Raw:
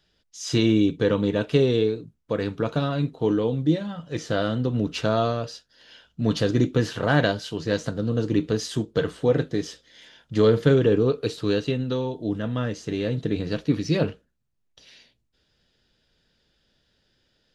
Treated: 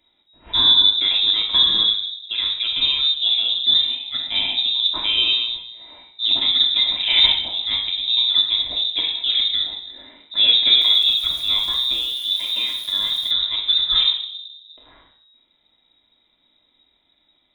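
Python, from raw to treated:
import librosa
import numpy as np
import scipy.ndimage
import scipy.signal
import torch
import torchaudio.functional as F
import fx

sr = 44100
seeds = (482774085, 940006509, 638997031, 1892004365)

y = fx.room_shoebox(x, sr, seeds[0], volume_m3=2100.0, walls='furnished', distance_m=3.2)
y = fx.freq_invert(y, sr, carrier_hz=3800)
y = fx.sample_gate(y, sr, floor_db=-32.0, at=(10.81, 13.31))
y = y * librosa.db_to_amplitude(-1.0)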